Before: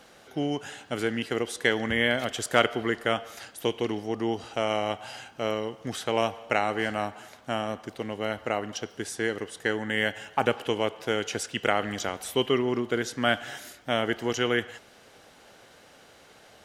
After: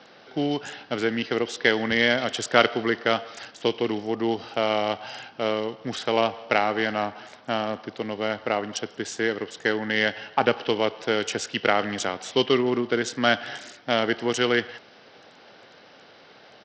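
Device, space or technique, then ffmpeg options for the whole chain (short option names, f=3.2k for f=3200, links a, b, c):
Bluetooth headset: -af "highpass=f=63:w=0.5412,highpass=f=63:w=1.3066,highpass=130,aresample=16000,aresample=44100,volume=3.5dB" -ar 44100 -c:a sbc -b:a 64k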